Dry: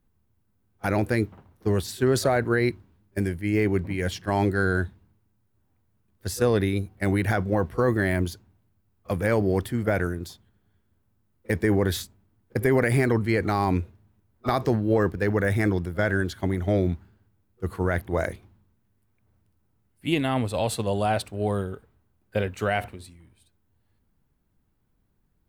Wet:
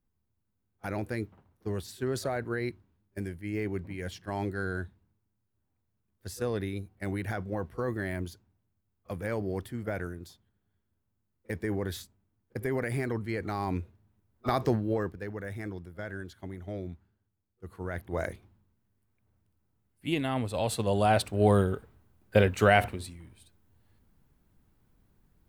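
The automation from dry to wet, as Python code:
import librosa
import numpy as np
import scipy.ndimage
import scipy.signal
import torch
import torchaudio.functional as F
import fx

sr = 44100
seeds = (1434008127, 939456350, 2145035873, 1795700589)

y = fx.gain(x, sr, db=fx.line((13.37, -10.0), (14.68, -3.0), (15.31, -15.0), (17.66, -15.0), (18.25, -5.5), (20.47, -5.5), (21.5, 4.0)))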